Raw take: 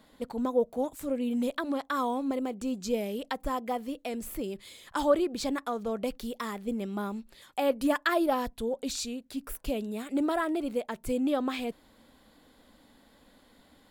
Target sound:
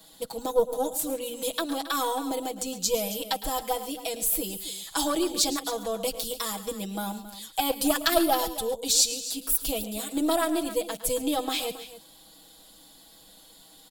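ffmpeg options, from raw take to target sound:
-filter_complex "[0:a]equalizer=f=740:w=5.4:g=7,aecho=1:1:6.2:0.93,aeval=exprs='0.376*(cos(1*acos(clip(val(0)/0.376,-1,1)))-cos(1*PI/2))+0.0841*(cos(2*acos(clip(val(0)/0.376,-1,1)))-cos(2*PI/2))':c=same,acrossover=split=270|1200[a][b][c];[c]aexciter=amount=3.8:drive=7.1:freq=3k[d];[a][b][d]amix=inputs=3:normalize=0,aecho=1:1:109|137|271:0.168|0.141|0.188,volume=-2.5dB"

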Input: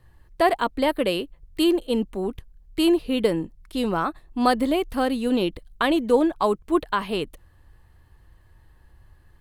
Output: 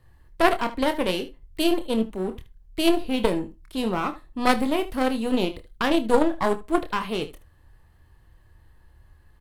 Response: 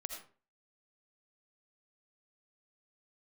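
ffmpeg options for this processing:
-filter_complex "[0:a]aeval=exprs='clip(val(0),-1,0.0531)':c=same,aecho=1:1:27|76:0.398|0.178,asplit=2[a][b];[1:a]atrim=start_sample=2205,asetrate=70560,aresample=44100[c];[b][c]afir=irnorm=-1:irlink=0,volume=-8.5dB[d];[a][d]amix=inputs=2:normalize=0,aeval=exprs='0.596*(cos(1*acos(clip(val(0)/0.596,-1,1)))-cos(1*PI/2))+0.0944*(cos(3*acos(clip(val(0)/0.596,-1,1)))-cos(3*PI/2))':c=same,volume=2.5dB"

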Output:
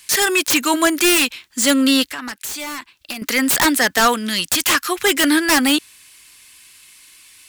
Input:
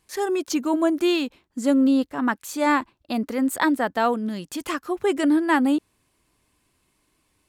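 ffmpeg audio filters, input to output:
-filter_complex "[0:a]acrossover=split=180|1700[a][b][c];[c]aeval=exprs='0.188*sin(PI/2*10*val(0)/0.188)':c=same[d];[a][b][d]amix=inputs=3:normalize=0,asettb=1/sr,asplit=3[e][f][g];[e]atrim=end=2.124[h];[f]atrim=start=2.12:end=3.22,asetpts=PTS-STARTPTS,afade=t=in:d=0.004:c=qsin,afade=t=out:st=1.096:d=0.004:c=qsin,acompressor=threshold=-31dB:ratio=4[i];[g]atrim=start=3.216[j];[h][i]acrossfade=d=0.004:c1=hsin:c2=qsin[k];[k][j]acrossfade=d=0.004:c1=qsin:c2=hsin,volume=2dB"

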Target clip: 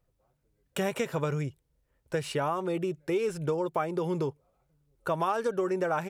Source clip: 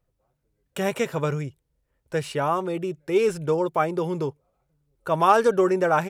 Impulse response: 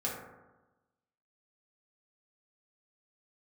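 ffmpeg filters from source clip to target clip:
-af "acompressor=threshold=-26dB:ratio=5"

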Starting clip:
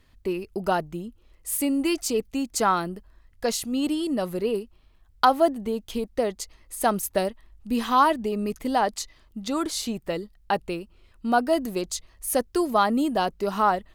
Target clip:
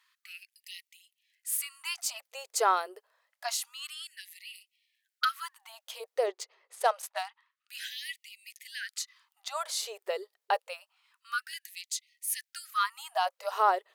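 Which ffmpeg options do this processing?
-filter_complex "[0:a]asettb=1/sr,asplit=3[a][b][c];[a]atrim=end=6.264[d];[b]atrim=start=6.26:end=7.69,asetpts=PTS-STARTPTS,afade=t=in:d=0.004:c=qsin,afade=t=out:st=1.426:d=0.004:c=qsin,adynamicsmooth=sensitivity=6:basefreq=4.1k[e];[c]atrim=start=7.686[f];[d][e]acrossfade=d=0.004:c1=hsin:c2=qsin[g];[g][f]acrossfade=d=0.004:c1=qsin:c2=hsin,afftfilt=real='re*gte(b*sr/1024,370*pow(1900/370,0.5+0.5*sin(2*PI*0.27*pts/sr)))':imag='im*gte(b*sr/1024,370*pow(1900/370,0.5+0.5*sin(2*PI*0.27*pts/sr)))':win_size=1024:overlap=0.75,volume=-3dB"

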